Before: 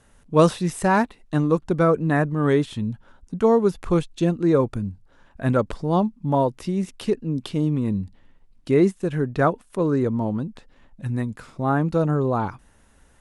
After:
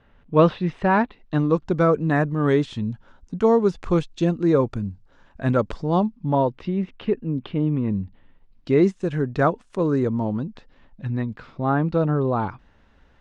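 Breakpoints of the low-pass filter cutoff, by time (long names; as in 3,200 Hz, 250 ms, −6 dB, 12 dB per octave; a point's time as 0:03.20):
low-pass filter 24 dB per octave
0:00.89 3,400 Hz
0:01.81 6,900 Hz
0:05.78 6,900 Hz
0:06.93 3,000 Hz
0:07.99 3,000 Hz
0:09.02 7,200 Hz
0:10.07 7,200 Hz
0:11.27 4,400 Hz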